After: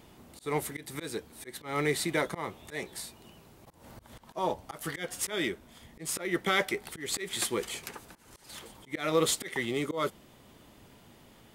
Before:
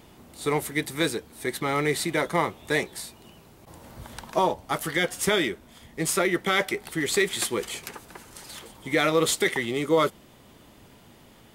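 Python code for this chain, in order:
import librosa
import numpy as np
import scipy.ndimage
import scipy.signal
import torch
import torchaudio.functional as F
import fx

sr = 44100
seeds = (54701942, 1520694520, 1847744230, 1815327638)

y = fx.auto_swell(x, sr, attack_ms=185.0)
y = F.gain(torch.from_numpy(y), -3.5).numpy()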